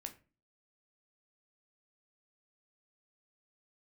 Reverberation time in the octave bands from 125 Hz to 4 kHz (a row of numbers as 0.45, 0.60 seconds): 0.50, 0.50, 0.40, 0.30, 0.30, 0.25 seconds